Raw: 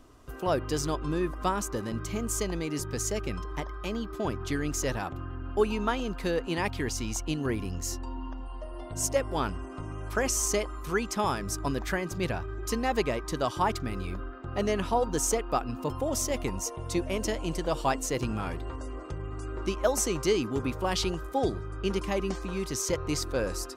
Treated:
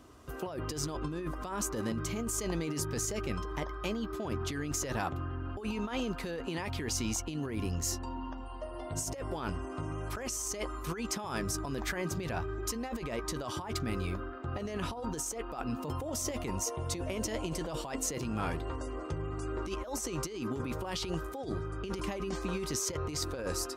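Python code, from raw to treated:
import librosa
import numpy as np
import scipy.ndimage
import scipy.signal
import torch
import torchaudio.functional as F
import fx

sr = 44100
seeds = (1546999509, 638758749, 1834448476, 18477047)

y = scipy.signal.sosfilt(scipy.signal.butter(2, 54.0, 'highpass', fs=sr, output='sos'), x)
y = fx.doubler(y, sr, ms=13.0, db=-13.0)
y = fx.over_compress(y, sr, threshold_db=-33.0, ratio=-1.0)
y = y * 10.0 ** (-2.0 / 20.0)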